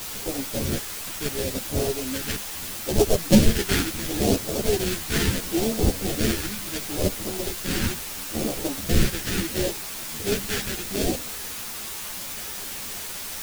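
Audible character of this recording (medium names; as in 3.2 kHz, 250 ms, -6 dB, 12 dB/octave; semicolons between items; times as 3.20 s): aliases and images of a low sample rate 1.1 kHz, jitter 20%; phasing stages 2, 0.73 Hz, lowest notch 600–1700 Hz; a quantiser's noise floor 6-bit, dither triangular; a shimmering, thickened sound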